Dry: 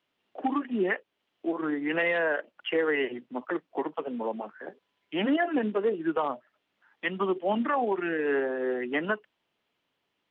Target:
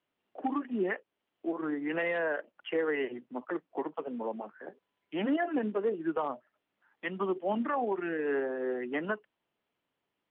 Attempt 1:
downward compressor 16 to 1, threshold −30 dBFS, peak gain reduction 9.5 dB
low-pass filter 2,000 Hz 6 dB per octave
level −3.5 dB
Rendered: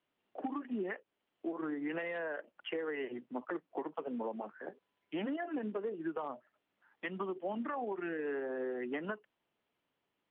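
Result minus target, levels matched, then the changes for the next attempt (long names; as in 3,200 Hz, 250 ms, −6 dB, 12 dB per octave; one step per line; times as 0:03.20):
downward compressor: peak gain reduction +9.5 dB
remove: downward compressor 16 to 1, threshold −30 dBFS, peak gain reduction 9.5 dB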